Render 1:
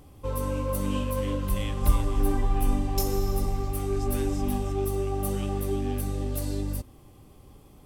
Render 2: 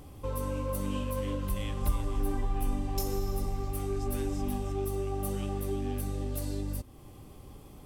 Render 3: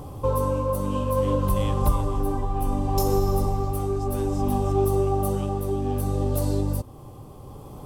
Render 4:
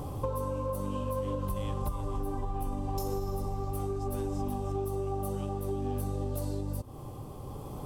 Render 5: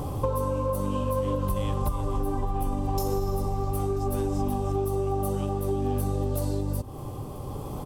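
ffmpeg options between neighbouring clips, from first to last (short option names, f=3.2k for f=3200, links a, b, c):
-af "acompressor=threshold=-44dB:ratio=1.5,volume=2.5dB"
-af "equalizer=f=125:t=o:w=1:g=8,equalizer=f=500:t=o:w=1:g=6,equalizer=f=1k:t=o:w=1:g=9,equalizer=f=2k:t=o:w=1:g=-7,tremolo=f=0.62:d=0.41,volume=6.5dB"
-af "acompressor=threshold=-29dB:ratio=10"
-af "aecho=1:1:987:0.0708,volume=6dB"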